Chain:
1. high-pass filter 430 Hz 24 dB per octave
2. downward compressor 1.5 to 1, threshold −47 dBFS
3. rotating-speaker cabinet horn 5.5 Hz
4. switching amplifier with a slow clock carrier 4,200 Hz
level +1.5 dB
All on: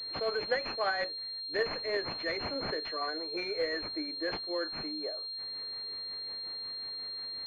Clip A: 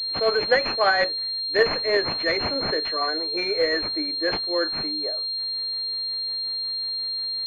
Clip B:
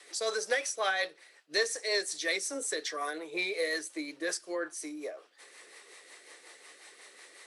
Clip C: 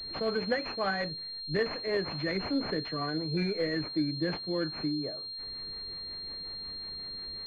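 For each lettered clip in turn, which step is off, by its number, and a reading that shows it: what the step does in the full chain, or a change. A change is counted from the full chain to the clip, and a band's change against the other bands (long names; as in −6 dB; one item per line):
2, average gain reduction 8.0 dB
4, 2 kHz band +4.0 dB
1, 125 Hz band +15.0 dB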